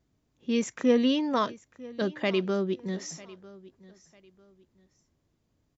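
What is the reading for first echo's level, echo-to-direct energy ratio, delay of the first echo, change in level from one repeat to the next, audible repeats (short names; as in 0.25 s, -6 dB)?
-20.5 dB, -20.0 dB, 0.948 s, -10.5 dB, 2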